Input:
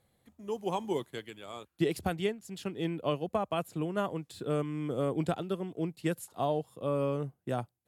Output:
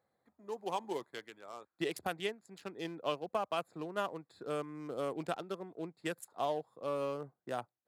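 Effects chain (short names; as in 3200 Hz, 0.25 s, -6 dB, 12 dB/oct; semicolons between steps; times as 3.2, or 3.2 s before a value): Wiener smoothing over 15 samples; HPF 920 Hz 6 dB/oct; notch 2200 Hz, Q 29; gain +1.5 dB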